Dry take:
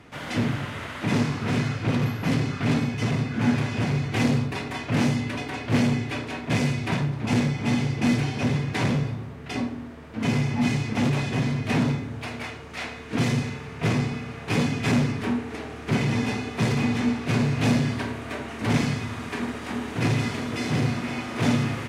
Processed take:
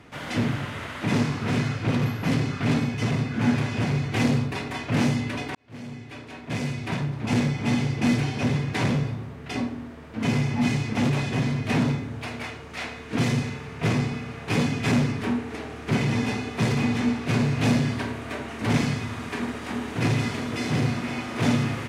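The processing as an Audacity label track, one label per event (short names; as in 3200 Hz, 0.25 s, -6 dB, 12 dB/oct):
5.550000	7.470000	fade in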